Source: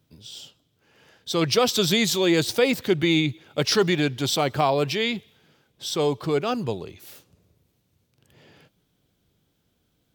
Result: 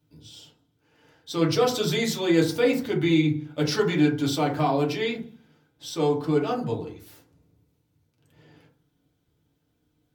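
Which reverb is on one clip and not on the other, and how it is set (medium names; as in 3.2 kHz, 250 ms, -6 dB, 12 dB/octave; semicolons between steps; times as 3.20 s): FDN reverb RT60 0.44 s, low-frequency decay 1.35×, high-frequency decay 0.35×, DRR -3.5 dB; trim -8.5 dB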